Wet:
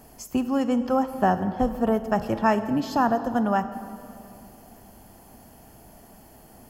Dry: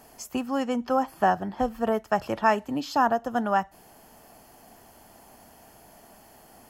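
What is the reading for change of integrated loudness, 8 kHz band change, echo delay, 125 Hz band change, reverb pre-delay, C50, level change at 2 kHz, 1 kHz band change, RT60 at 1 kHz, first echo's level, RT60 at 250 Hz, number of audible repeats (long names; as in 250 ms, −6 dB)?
+2.0 dB, −0.5 dB, no echo audible, +7.0 dB, 23 ms, 11.5 dB, −1.5 dB, 0.0 dB, 2.5 s, no echo audible, 3.0 s, no echo audible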